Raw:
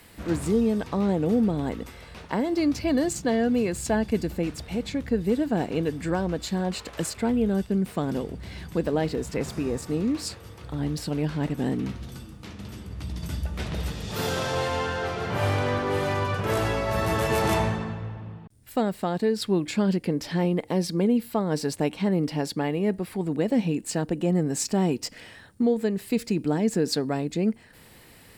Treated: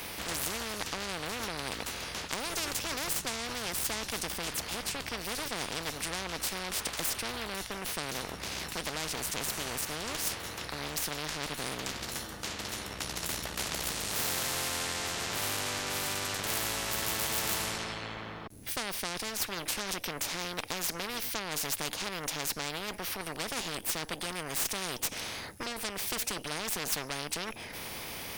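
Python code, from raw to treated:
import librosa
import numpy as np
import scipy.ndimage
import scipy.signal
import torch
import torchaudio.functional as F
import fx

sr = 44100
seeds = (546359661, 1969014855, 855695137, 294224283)

y = fx.cheby_harmonics(x, sr, harmonics=(8,), levels_db=(-22,), full_scale_db=-12.0)
y = fx.formant_shift(y, sr, semitones=3)
y = fx.spectral_comp(y, sr, ratio=4.0)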